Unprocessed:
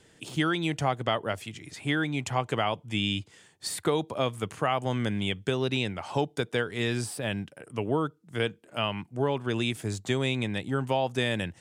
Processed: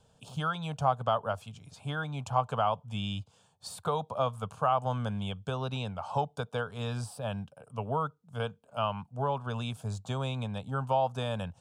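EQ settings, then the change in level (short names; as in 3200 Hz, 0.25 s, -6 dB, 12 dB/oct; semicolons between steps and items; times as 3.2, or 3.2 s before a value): high shelf 3900 Hz -11 dB; dynamic EQ 1300 Hz, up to +6 dB, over -43 dBFS, Q 1.3; fixed phaser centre 810 Hz, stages 4; 0.0 dB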